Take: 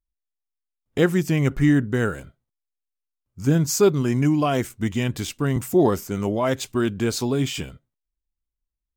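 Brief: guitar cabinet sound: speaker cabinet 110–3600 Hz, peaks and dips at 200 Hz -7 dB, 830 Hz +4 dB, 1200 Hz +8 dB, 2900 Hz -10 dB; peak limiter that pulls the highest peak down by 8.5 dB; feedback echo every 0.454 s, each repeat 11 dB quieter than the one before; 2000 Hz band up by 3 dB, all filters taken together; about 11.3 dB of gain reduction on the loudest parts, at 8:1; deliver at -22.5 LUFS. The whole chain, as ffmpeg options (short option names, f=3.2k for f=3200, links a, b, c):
-af "equalizer=f=2k:t=o:g=3.5,acompressor=threshold=-24dB:ratio=8,alimiter=limit=-23.5dB:level=0:latency=1,highpass=110,equalizer=f=200:t=q:w=4:g=-7,equalizer=f=830:t=q:w=4:g=4,equalizer=f=1.2k:t=q:w=4:g=8,equalizer=f=2.9k:t=q:w=4:g=-10,lowpass=f=3.6k:w=0.5412,lowpass=f=3.6k:w=1.3066,aecho=1:1:454|908|1362:0.282|0.0789|0.0221,volume=12.5dB"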